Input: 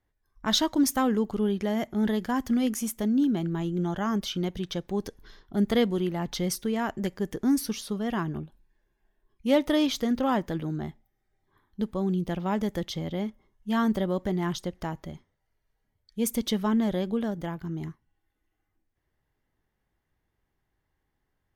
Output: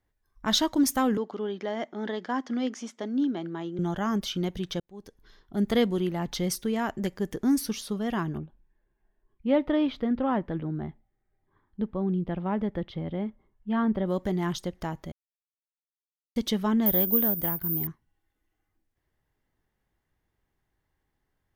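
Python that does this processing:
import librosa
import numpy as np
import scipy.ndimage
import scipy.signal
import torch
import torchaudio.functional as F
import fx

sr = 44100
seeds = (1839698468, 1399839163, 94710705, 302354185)

y = fx.cabinet(x, sr, low_hz=210.0, low_slope=24, high_hz=5400.0, hz=(210.0, 380.0, 2600.0, 4400.0), db=(-8, -3, -5, -3), at=(1.17, 3.79))
y = fx.air_absorb(y, sr, metres=430.0, at=(8.38, 14.06))
y = fx.resample_bad(y, sr, factor=3, down='filtered', up='zero_stuff', at=(16.86, 17.87))
y = fx.edit(y, sr, fx.fade_in_span(start_s=4.8, length_s=0.98),
    fx.silence(start_s=15.12, length_s=1.24), tone=tone)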